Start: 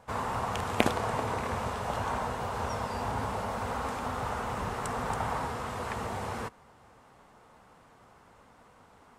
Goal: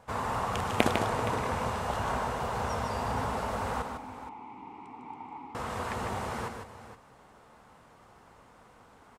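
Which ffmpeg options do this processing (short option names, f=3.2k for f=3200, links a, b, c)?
-filter_complex "[0:a]asettb=1/sr,asplit=3[a][b][c];[a]atrim=end=3.824[d];[b]atrim=start=3.82:end=5.55,asetpts=PTS-STARTPTS,afade=t=in:d=0.004:c=qsin,afade=t=out:st=1.726:d=0.004:c=qsin,asplit=3[e][f][g];[e]bandpass=f=300:t=q:w=8,volume=0dB[h];[f]bandpass=f=870:t=q:w=8,volume=-6dB[i];[g]bandpass=f=2.24k:t=q:w=8,volume=-9dB[j];[h][i][j]amix=inputs=3:normalize=0[k];[c]atrim=start=5.546[l];[d][k]acrossfade=d=0.004:c1=hsin:c2=qsin[m];[m][l]acrossfade=d=0.004:c1=qsin:c2=hsin,aecho=1:1:152|469:0.501|0.211"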